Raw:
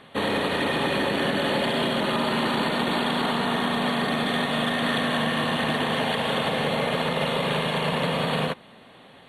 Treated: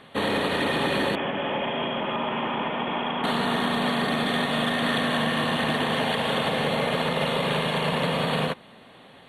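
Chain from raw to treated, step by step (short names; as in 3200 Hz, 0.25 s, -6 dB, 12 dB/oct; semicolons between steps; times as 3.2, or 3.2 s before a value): 1.15–3.24 rippled Chebyshev low-pass 3400 Hz, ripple 6 dB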